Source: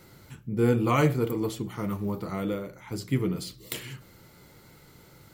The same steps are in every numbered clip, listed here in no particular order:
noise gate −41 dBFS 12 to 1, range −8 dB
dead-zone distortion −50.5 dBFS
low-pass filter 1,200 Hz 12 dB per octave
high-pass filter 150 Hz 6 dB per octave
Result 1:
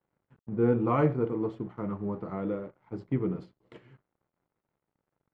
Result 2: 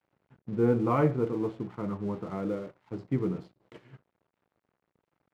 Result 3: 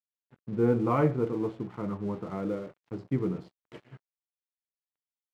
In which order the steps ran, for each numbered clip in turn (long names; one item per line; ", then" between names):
high-pass filter, then dead-zone distortion, then low-pass filter, then noise gate
low-pass filter, then dead-zone distortion, then noise gate, then high-pass filter
low-pass filter, then noise gate, then dead-zone distortion, then high-pass filter